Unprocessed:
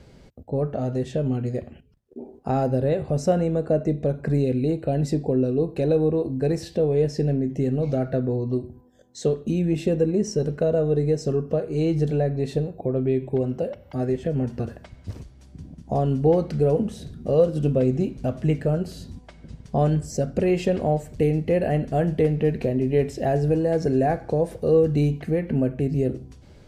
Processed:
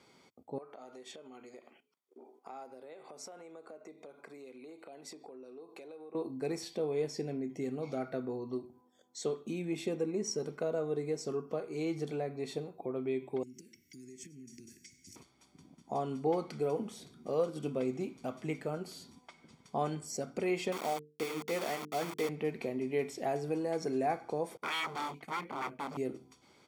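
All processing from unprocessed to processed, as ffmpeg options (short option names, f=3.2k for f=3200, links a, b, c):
-filter_complex "[0:a]asettb=1/sr,asplit=3[a][b][c];[a]atrim=end=0.584[d];[b]atrim=start=0.58:end=6.15,asetpts=PTS-STARTPTS,afade=t=in:d=0.004:c=qsin,afade=t=out:st=5.566:d=0.004:c=qsin,highpass=370,acompressor=threshold=-37dB:ratio=4:attack=3.2:release=140:knee=1:detection=peak[e];[c]atrim=start=6.146[f];[d][e]acrossfade=d=0.004:c1=hsin:c2=qsin[g];[g][f]acrossfade=d=0.004:c1=qsin:c2=hsin,asettb=1/sr,asplit=3[h][i][j];[h]atrim=end=13.434[k];[i]atrim=start=13.43:end=15.16,asetpts=PTS-STARTPTS,afade=t=in:d=0.004:c=qsin,afade=t=out:st=1.726:d=0.004:c=qsin,highshelf=f=4.7k:t=q:w=3:g=9,acompressor=threshold=-31dB:ratio=10:attack=3.2:release=140:knee=1:detection=peak,asuperstop=centerf=820:order=12:qfactor=0.56[l];[j]atrim=start=15.156[m];[k][l]acrossfade=d=0.004:c1=hsin:c2=qsin[n];[n][m]acrossfade=d=0.004:c1=qsin:c2=hsin,asettb=1/sr,asplit=3[o][p][q];[o]atrim=end=20.724[r];[p]atrim=start=20.72:end=22.29,asetpts=PTS-STARTPTS,afade=t=in:d=0.004:c=qsin,afade=t=out:st=1.566:d=0.004:c=qsin,lowshelf=f=100:g=-12,aeval=exprs='val(0)*gte(abs(val(0)),0.0355)':c=same,bandreject=f=50:t=h:w=6,bandreject=f=100:t=h:w=6,bandreject=f=150:t=h:w=6,bandreject=f=200:t=h:w=6,bandreject=f=250:t=h:w=6,bandreject=f=300:t=h:w=6,bandreject=f=350:t=h:w=6,bandreject=f=400:t=h:w=6,bandreject=f=450:t=h:w=6[s];[q]atrim=start=22.286[t];[r][s]acrossfade=d=0.004:c1=hsin:c2=qsin[u];[u][t]acrossfade=d=0.004:c1=qsin:c2=hsin,asettb=1/sr,asplit=3[v][w][x];[v]atrim=end=24.574[y];[w]atrim=start=24.57:end=25.97,asetpts=PTS-STARTPTS,afade=t=in:d=0.004:c=qsin,afade=t=out:st=1.396:d=0.004:c=qsin,agate=range=-33dB:threshold=-33dB:ratio=3:release=100:detection=peak,aeval=exprs='0.0562*(abs(mod(val(0)/0.0562+3,4)-2)-1)':c=same[z];[x]atrim=start=25.966[aa];[y][z]acrossfade=d=0.004:c1=hsin:c2=qsin[ab];[ab][aa]acrossfade=d=0.004:c1=qsin:c2=hsin,highpass=420,aecho=1:1:0.9:0.57,volume=-5.5dB"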